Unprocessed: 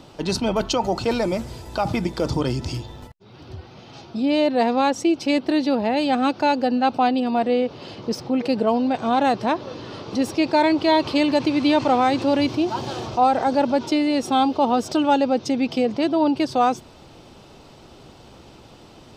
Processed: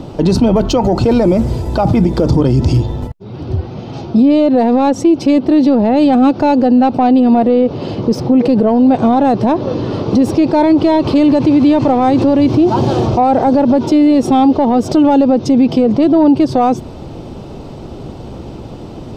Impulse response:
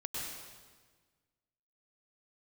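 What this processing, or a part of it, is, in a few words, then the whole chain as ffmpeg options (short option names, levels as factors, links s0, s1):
mastering chain: -af "equalizer=f=1600:t=o:w=0.77:g=-2,acompressor=threshold=0.0891:ratio=2,asoftclip=type=tanh:threshold=0.211,tiltshelf=f=890:g=7.5,alimiter=level_in=5.62:limit=0.891:release=50:level=0:latency=1,volume=0.75"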